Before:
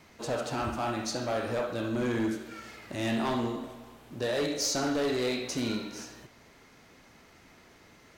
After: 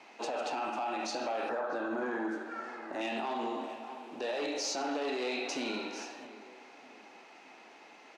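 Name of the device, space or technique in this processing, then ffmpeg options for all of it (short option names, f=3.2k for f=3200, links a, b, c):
laptop speaker: -filter_complex "[0:a]lowpass=6.2k,asettb=1/sr,asplit=3[a][b][c];[a]atrim=end=1.494[d];[b]atrim=start=1.49:end=3.01,asetpts=PTS-STARTPTS,afade=t=in:d=0.004:c=qsin,afade=t=out:st=1.516:d=0.004:c=qsin,highshelf=f=2k:t=q:w=3:g=-7[e];[c]atrim=start=3.006[f];[d][e]acrossfade=d=0.004:c1=hsin:c2=qsin[g];[g][f]acrossfade=d=0.004:c1=qsin:c2=hsin,highpass=f=260:w=0.5412,highpass=f=260:w=1.3066,equalizer=f=810:t=o:w=0.43:g=11,equalizer=f=2.6k:t=o:w=0.27:g=9,asplit=2[h][i];[i]adelay=634,lowpass=f=1.8k:p=1,volume=-19dB,asplit=2[j][k];[k]adelay=634,lowpass=f=1.8k:p=1,volume=0.39,asplit=2[l][m];[m]adelay=634,lowpass=f=1.8k:p=1,volume=0.39[n];[h][j][l][n]amix=inputs=4:normalize=0,alimiter=level_in=2.5dB:limit=-24dB:level=0:latency=1:release=72,volume=-2.5dB"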